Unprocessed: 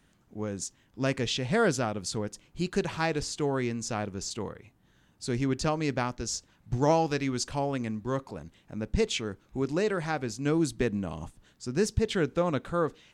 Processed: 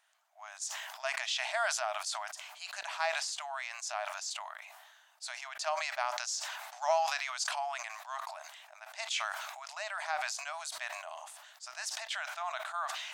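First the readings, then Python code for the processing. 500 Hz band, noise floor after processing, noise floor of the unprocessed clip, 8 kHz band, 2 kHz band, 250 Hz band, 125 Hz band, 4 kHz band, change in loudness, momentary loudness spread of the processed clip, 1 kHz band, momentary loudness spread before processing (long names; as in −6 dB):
−11.0 dB, −60 dBFS, −65 dBFS, −1.0 dB, +0.5 dB, below −40 dB, below −40 dB, −0.5 dB, −6.0 dB, 14 LU, −1.5 dB, 12 LU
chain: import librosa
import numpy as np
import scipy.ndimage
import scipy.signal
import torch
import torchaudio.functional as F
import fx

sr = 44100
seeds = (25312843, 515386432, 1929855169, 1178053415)

y = fx.brickwall_highpass(x, sr, low_hz=600.0)
y = fx.sustainer(y, sr, db_per_s=34.0)
y = F.gain(torch.from_numpy(y), -3.0).numpy()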